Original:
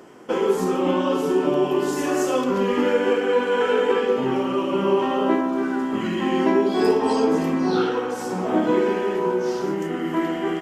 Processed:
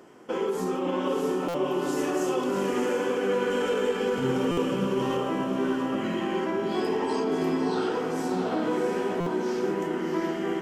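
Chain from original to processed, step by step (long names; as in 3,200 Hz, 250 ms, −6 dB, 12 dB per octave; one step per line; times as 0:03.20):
0:03.50–0:05.17: bass and treble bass +12 dB, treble +12 dB
brickwall limiter −14 dBFS, peak gain reduction 7.5 dB
feedback delay with all-pass diffusion 678 ms, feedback 44%, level −4 dB
buffer that repeats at 0:01.48/0:04.51/0:09.20, samples 256, times 10
level −5.5 dB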